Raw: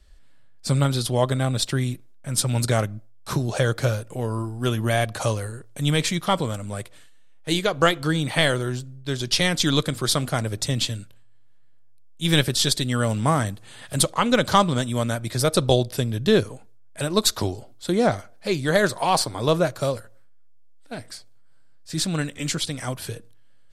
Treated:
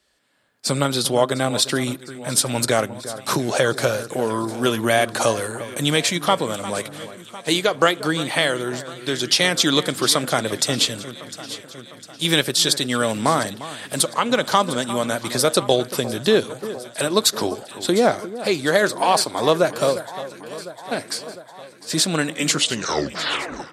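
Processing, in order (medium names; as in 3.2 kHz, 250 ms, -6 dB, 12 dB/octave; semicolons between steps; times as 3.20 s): tape stop on the ending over 1.23 s; high-pass 260 Hz 12 dB/octave; compression 1.5:1, threshold -34 dBFS, peak gain reduction 8 dB; echo whose repeats swap between lows and highs 352 ms, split 1.7 kHz, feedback 76%, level -14 dB; level rider gain up to 12 dB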